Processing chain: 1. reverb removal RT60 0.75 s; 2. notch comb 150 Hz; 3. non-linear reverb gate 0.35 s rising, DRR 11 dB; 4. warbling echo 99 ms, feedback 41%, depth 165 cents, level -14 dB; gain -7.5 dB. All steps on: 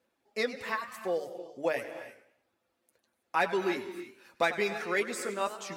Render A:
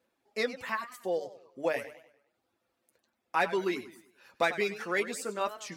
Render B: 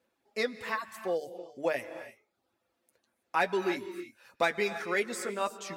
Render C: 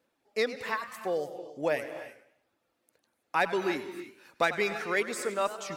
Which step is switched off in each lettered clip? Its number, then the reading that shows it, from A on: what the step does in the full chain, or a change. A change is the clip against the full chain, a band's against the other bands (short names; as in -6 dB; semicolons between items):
3, momentary loudness spread change -4 LU; 4, momentary loudness spread change +1 LU; 2, loudness change +1.5 LU